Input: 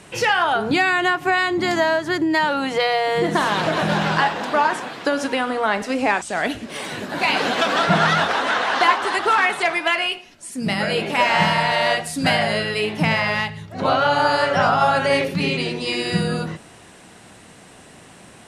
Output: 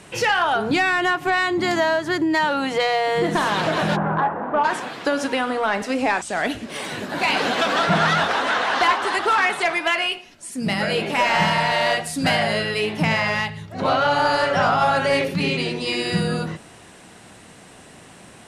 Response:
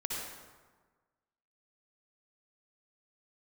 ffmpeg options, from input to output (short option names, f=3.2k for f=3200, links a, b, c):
-filter_complex "[0:a]asplit=3[a][b][c];[a]afade=t=out:st=3.95:d=0.02[d];[b]lowpass=f=1.4k:w=0.5412,lowpass=f=1.4k:w=1.3066,afade=t=in:st=3.95:d=0.02,afade=t=out:st=4.63:d=0.02[e];[c]afade=t=in:st=4.63:d=0.02[f];[d][e][f]amix=inputs=3:normalize=0,asoftclip=type=tanh:threshold=-9.5dB"